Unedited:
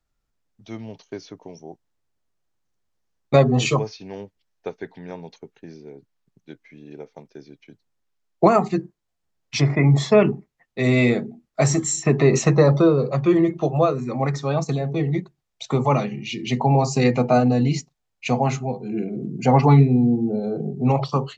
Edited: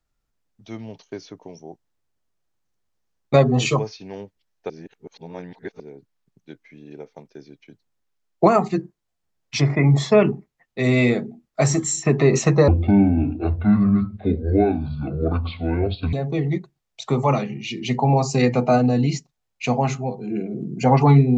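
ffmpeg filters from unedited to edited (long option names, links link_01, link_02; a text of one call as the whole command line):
ffmpeg -i in.wav -filter_complex "[0:a]asplit=5[link_01][link_02][link_03][link_04][link_05];[link_01]atrim=end=4.702[link_06];[link_02]atrim=start=4.698:end=5.802,asetpts=PTS-STARTPTS,areverse[link_07];[link_03]atrim=start=5.798:end=12.684[link_08];[link_04]atrim=start=12.68:end=14.75,asetpts=PTS-STARTPTS,asetrate=26460,aresample=44100[link_09];[link_05]atrim=start=14.746[link_10];[link_06][link_07]acrossfade=duration=0.004:curve1=hsin:curve2=hsin[link_11];[link_11][link_08]acrossfade=duration=0.004:curve1=hsin:curve2=hsin[link_12];[link_12][link_09]acrossfade=duration=0.004:curve1=hsin:curve2=hsin[link_13];[link_13][link_10]acrossfade=duration=0.004:curve1=hsin:curve2=hsin" out.wav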